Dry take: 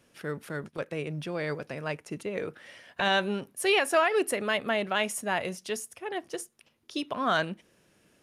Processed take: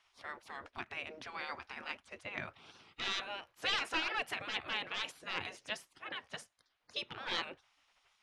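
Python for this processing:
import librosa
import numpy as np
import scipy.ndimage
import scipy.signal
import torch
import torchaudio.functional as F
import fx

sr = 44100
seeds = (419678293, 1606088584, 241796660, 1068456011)

y = np.clip(10.0 ** (20.0 / 20.0) * x, -1.0, 1.0) / 10.0 ** (20.0 / 20.0)
y = scipy.signal.sosfilt(scipy.signal.butter(2, 4000.0, 'lowpass', fs=sr, output='sos'), y)
y = fx.spec_gate(y, sr, threshold_db=-15, keep='weak')
y = fx.record_warp(y, sr, rpm=78.0, depth_cents=100.0)
y = y * librosa.db_to_amplitude(1.5)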